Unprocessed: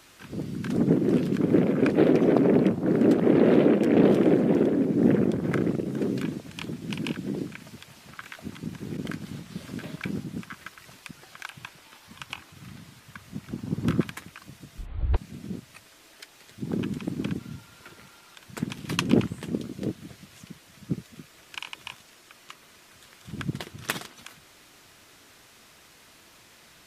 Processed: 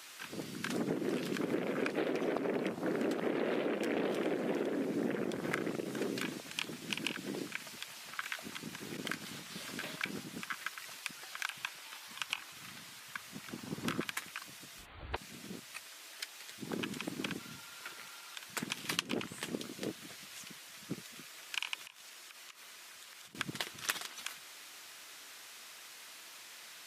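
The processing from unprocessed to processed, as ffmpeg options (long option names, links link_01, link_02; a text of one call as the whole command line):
ffmpeg -i in.wav -filter_complex "[0:a]asettb=1/sr,asplit=3[link_01][link_02][link_03];[link_01]atrim=end=21.854[link_04];[link_02]atrim=start=21.85:end=23.35,asetpts=PTS-STARTPTS,afade=type=in:duration=0.004:curve=qsin,afade=type=out:start_time=1.496:duration=0.004:curve=qsin,acompressor=threshold=-50dB:ratio=12:attack=3.2:release=140:knee=1:detection=peak[link_05];[link_03]atrim=start=23.346[link_06];[link_04][link_05]acrossfade=duration=0.004:curve1=hsin:curve2=qsin[link_07];[link_07][link_06]acrossfade=duration=0.004:curve1=qsin:curve2=hsin,highpass=frequency=1300:poles=1,acompressor=threshold=-35dB:ratio=6,volume=4dB" out.wav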